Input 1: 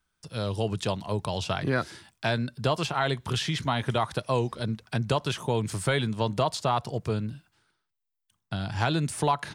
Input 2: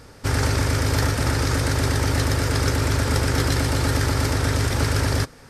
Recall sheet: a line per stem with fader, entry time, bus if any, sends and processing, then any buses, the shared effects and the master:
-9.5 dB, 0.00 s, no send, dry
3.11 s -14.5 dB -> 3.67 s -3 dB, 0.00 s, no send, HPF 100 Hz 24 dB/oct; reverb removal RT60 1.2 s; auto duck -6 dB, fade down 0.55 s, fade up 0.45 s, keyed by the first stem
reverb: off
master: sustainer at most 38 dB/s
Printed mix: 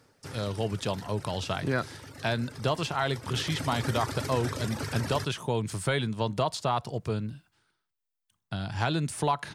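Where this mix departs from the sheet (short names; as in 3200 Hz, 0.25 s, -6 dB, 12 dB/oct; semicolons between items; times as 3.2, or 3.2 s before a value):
stem 1 -9.5 dB -> -2.0 dB; master: missing sustainer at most 38 dB/s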